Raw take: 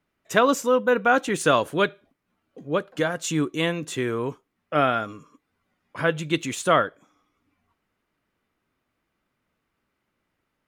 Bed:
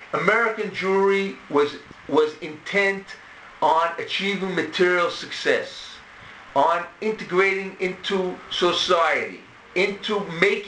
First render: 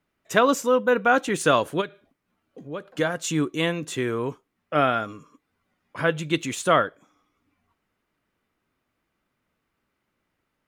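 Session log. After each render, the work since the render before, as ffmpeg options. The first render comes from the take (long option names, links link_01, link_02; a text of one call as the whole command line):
ffmpeg -i in.wav -filter_complex "[0:a]asplit=3[link_01][link_02][link_03];[link_01]afade=type=out:start_time=1.8:duration=0.02[link_04];[link_02]acompressor=threshold=-36dB:ratio=2:attack=3.2:release=140:knee=1:detection=peak,afade=type=in:start_time=1.8:duration=0.02,afade=type=out:start_time=2.85:duration=0.02[link_05];[link_03]afade=type=in:start_time=2.85:duration=0.02[link_06];[link_04][link_05][link_06]amix=inputs=3:normalize=0" out.wav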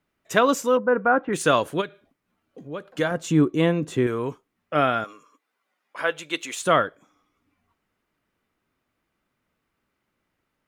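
ffmpeg -i in.wav -filter_complex "[0:a]asettb=1/sr,asplit=3[link_01][link_02][link_03];[link_01]atrim=end=0.774[link_04];[link_02]atrim=start=0.77:end=1.33,asetpts=PTS-STARTPTS,afade=type=in:duration=0.004:curve=qsin,afade=type=out:start_time=0.556:duration=0.004:curve=qsin,lowpass=frequency=1700:width=0.5412,lowpass=frequency=1700:width=1.3066[link_05];[link_03]atrim=start=1.326[link_06];[link_04][link_05]acrossfade=duration=0.004:curve1=hsin:curve2=qsin[link_07];[link_07][link_06]acrossfade=duration=0.004:curve1=qsin:curve2=hsin,asettb=1/sr,asplit=3[link_08][link_09][link_10];[link_08]atrim=end=3.114[link_11];[link_09]atrim=start=3.11:end=4.07,asetpts=PTS-STARTPTS,afade=type=in:duration=0.004:curve=qsin,afade=type=out:start_time=0.956:duration=0.004:curve=qsin,tiltshelf=frequency=1300:gain=6.5[link_12];[link_10]atrim=start=4.066[link_13];[link_11][link_12]acrossfade=duration=0.004:curve1=hsin:curve2=qsin[link_14];[link_14][link_13]acrossfade=duration=0.004:curve1=qsin:curve2=hsin,asettb=1/sr,asplit=3[link_15][link_16][link_17];[link_15]atrim=end=5.044[link_18];[link_16]atrim=start=5.04:end=6.62,asetpts=PTS-STARTPTS,afade=type=in:duration=0.004:curve=qsin,afade=type=out:start_time=1.576:duration=0.004:curve=qsin,highpass=500[link_19];[link_17]atrim=start=6.616[link_20];[link_18][link_19]acrossfade=duration=0.004:curve1=hsin:curve2=qsin[link_21];[link_21][link_20]acrossfade=duration=0.004:curve1=qsin:curve2=hsin" out.wav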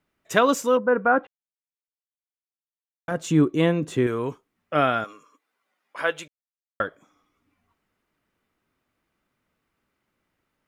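ffmpeg -i in.wav -filter_complex "[0:a]asplit=5[link_01][link_02][link_03][link_04][link_05];[link_01]atrim=end=1.27,asetpts=PTS-STARTPTS,afade=type=out:start_time=1.266:duration=0.004:curve=hsin[link_06];[link_02]atrim=start=1.27:end=3.08,asetpts=PTS-STARTPTS,volume=0[link_07];[link_03]atrim=start=3.08:end=6.28,asetpts=PTS-STARTPTS,afade=type=in:duration=0.004:curve=hsin,afade=type=out:start_time=3.196:duration=0.004:curve=hsin[link_08];[link_04]atrim=start=6.28:end=6.8,asetpts=PTS-STARTPTS,volume=0[link_09];[link_05]atrim=start=6.8,asetpts=PTS-STARTPTS,afade=type=in:duration=0.004:curve=hsin[link_10];[link_06][link_07][link_08][link_09][link_10]concat=n=5:v=0:a=1" out.wav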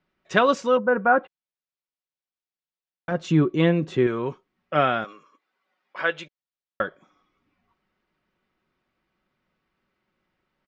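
ffmpeg -i in.wav -af "lowpass=frequency=5200:width=0.5412,lowpass=frequency=5200:width=1.3066,aecho=1:1:5.4:0.38" out.wav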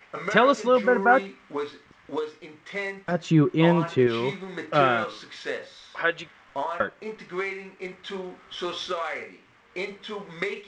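ffmpeg -i in.wav -i bed.wav -filter_complex "[1:a]volume=-11dB[link_01];[0:a][link_01]amix=inputs=2:normalize=0" out.wav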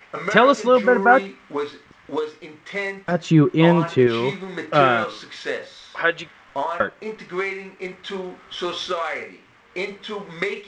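ffmpeg -i in.wav -af "volume=4.5dB" out.wav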